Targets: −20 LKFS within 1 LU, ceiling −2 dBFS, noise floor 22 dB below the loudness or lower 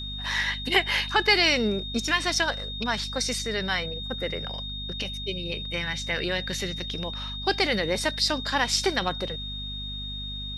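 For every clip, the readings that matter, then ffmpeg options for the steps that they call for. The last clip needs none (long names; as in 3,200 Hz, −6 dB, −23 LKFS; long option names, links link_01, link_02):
mains hum 50 Hz; hum harmonics up to 250 Hz; level of the hum −35 dBFS; interfering tone 3,700 Hz; level of the tone −34 dBFS; integrated loudness −26.0 LKFS; sample peak −8.0 dBFS; target loudness −20.0 LKFS
→ -af "bandreject=frequency=50:width_type=h:width=4,bandreject=frequency=100:width_type=h:width=4,bandreject=frequency=150:width_type=h:width=4,bandreject=frequency=200:width_type=h:width=4,bandreject=frequency=250:width_type=h:width=4"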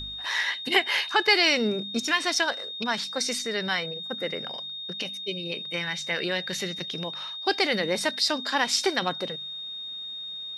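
mains hum none found; interfering tone 3,700 Hz; level of the tone −34 dBFS
→ -af "bandreject=frequency=3700:width=30"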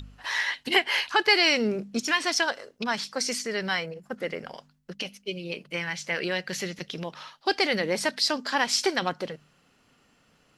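interfering tone none found; integrated loudness −26.5 LKFS; sample peak −7.5 dBFS; target loudness −20.0 LKFS
→ -af "volume=6.5dB,alimiter=limit=-2dB:level=0:latency=1"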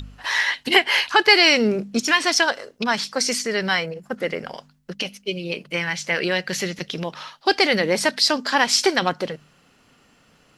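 integrated loudness −20.0 LKFS; sample peak −2.0 dBFS; background noise floor −58 dBFS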